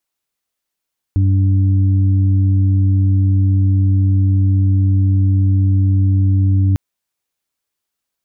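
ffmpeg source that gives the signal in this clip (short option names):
-f lavfi -i "aevalsrc='0.316*sin(2*PI*96.2*t)+0.0473*sin(2*PI*192.4*t)+0.0708*sin(2*PI*288.6*t)':d=5.6:s=44100"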